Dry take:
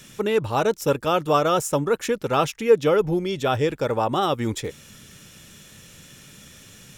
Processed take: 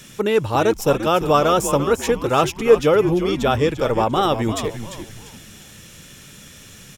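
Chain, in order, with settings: frequency-shifting echo 345 ms, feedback 35%, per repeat -110 Hz, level -10 dB; trim +3.5 dB

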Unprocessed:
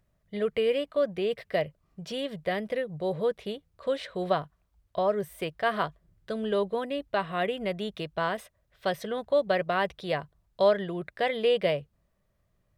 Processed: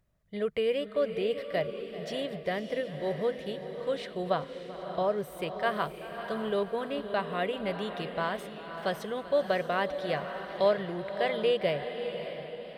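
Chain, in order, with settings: echo that smears into a reverb 591 ms, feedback 41%, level -8.5 dB; modulated delay 387 ms, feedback 69%, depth 61 cents, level -17.5 dB; trim -2.5 dB

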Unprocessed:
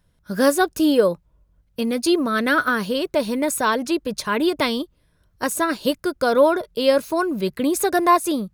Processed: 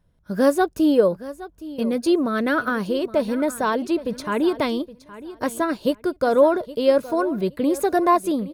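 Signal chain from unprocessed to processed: FFT filter 690 Hz 0 dB, 1.5 kHz -5 dB, 7.1 kHz -9 dB; on a send: feedback delay 818 ms, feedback 20%, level -16.5 dB

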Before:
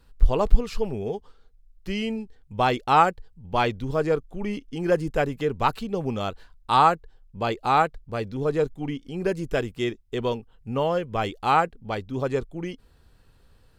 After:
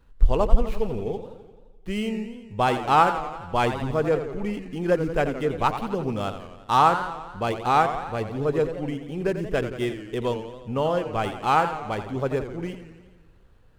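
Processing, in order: median filter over 9 samples; modulated delay 86 ms, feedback 64%, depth 159 cents, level -10 dB

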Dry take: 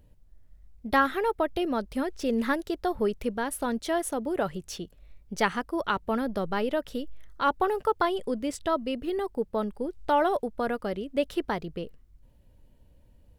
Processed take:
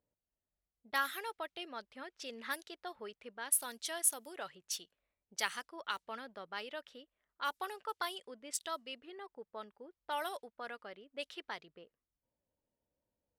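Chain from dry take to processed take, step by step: wow and flutter 16 cents; differentiator; level-controlled noise filter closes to 750 Hz, open at -37.5 dBFS; trim +4 dB

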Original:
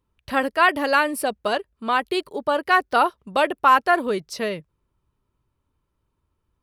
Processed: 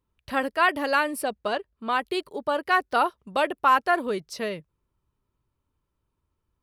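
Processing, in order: 1.21–1.88 s: treble shelf 12 kHz -> 6.1 kHz -12 dB; trim -4 dB

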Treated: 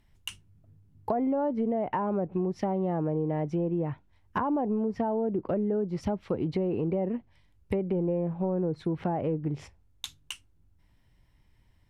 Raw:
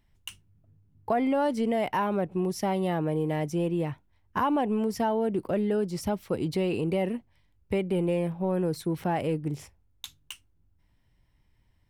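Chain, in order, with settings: low-pass that closes with the level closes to 840 Hz, closed at -23 dBFS; compression 2:1, threshold -31 dBFS, peak gain reduction 5 dB; trim +3 dB

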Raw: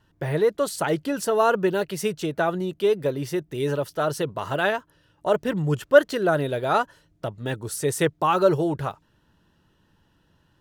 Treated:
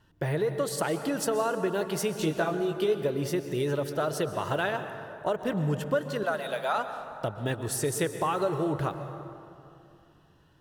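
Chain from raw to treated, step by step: 6.23–6.78 s: high-pass 640 Hz 24 dB/octave; compression, threshold -25 dBFS, peak gain reduction 16 dB; 2.15–2.95 s: doubling 19 ms -4 dB; reverberation RT60 2.6 s, pre-delay 113 ms, DRR 8.5 dB

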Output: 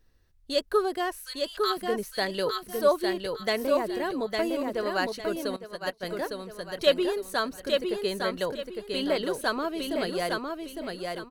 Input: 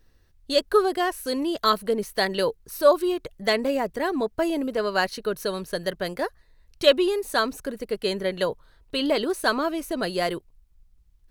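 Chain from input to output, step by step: 1.19–1.77 s: high-pass 1.3 kHz 24 dB/octave; feedback delay 857 ms, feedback 28%, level -4 dB; 5.56–6.03 s: upward expansion 2.5:1, over -36 dBFS; trim -5 dB

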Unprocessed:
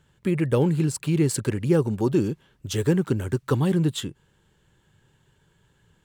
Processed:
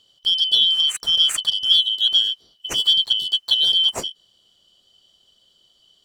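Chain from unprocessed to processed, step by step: four frequency bands reordered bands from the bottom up 3412; trim +3.5 dB

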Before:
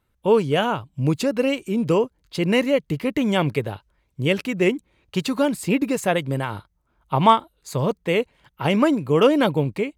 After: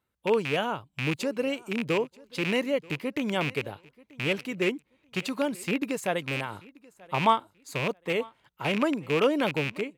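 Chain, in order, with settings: rattle on loud lows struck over -25 dBFS, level -12 dBFS; high-pass 170 Hz 6 dB/octave; on a send: feedback delay 934 ms, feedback 24%, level -23.5 dB; on the sum: trim -7 dB

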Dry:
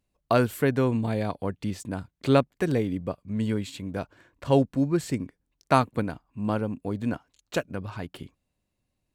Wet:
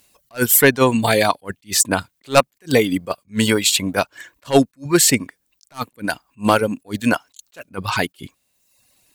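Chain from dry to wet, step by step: reverb removal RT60 0.78 s; tilt EQ +3.5 dB/octave; in parallel at +1 dB: compression, threshold -35 dBFS, peak gain reduction 19 dB; on the sum: sine folder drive 8 dB, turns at -3.5 dBFS; attacks held to a fixed rise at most 350 dB/s; trim +2 dB

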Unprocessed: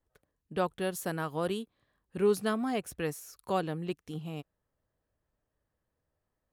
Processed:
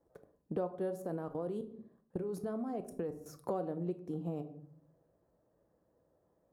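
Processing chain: high-pass 390 Hz 6 dB/octave; 0.96–3.26 s: level held to a coarse grid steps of 21 dB; FFT filter 560 Hz 0 dB, 2.9 kHz -26 dB, 5.4 kHz -20 dB; reverberation RT60 0.50 s, pre-delay 6 ms, DRR 8.5 dB; compression 4:1, threshold -53 dBFS, peak gain reduction 20.5 dB; trim +16 dB

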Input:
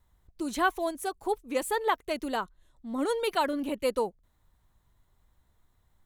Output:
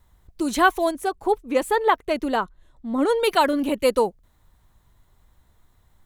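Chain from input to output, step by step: 0.91–3.23 s: treble shelf 3.7 kHz -9 dB; trim +8.5 dB

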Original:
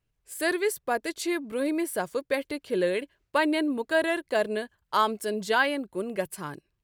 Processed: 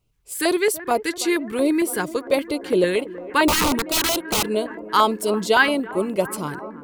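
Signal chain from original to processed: bucket-brigade echo 330 ms, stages 4096, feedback 81%, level -17 dB; 3.48–4.49 s: integer overflow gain 22.5 dB; LFO notch square 4.4 Hz 620–1700 Hz; trim +8.5 dB

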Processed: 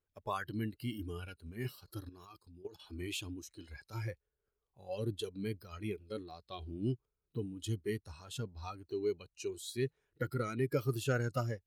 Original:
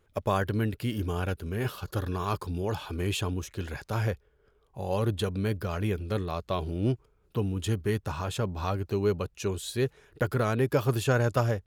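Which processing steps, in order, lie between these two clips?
spectral noise reduction 15 dB; 2.09–2.82 s: level held to a coarse grid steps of 16 dB; trim -7 dB

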